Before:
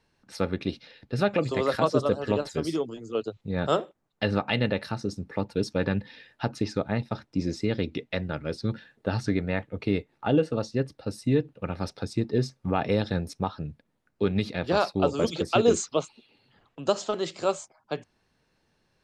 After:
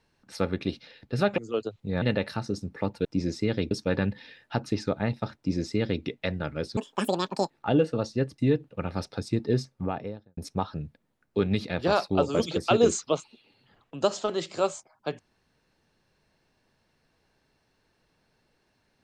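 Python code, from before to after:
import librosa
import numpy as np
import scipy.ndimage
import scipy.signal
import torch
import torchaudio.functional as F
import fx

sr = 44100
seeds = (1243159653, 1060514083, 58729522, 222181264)

y = fx.studio_fade_out(x, sr, start_s=12.4, length_s=0.82)
y = fx.edit(y, sr, fx.cut(start_s=1.38, length_s=1.61),
    fx.cut(start_s=3.63, length_s=0.94),
    fx.duplicate(start_s=7.26, length_s=0.66, to_s=5.6),
    fx.speed_span(start_s=8.66, length_s=1.43, speed=1.95),
    fx.cut(start_s=10.97, length_s=0.26), tone=tone)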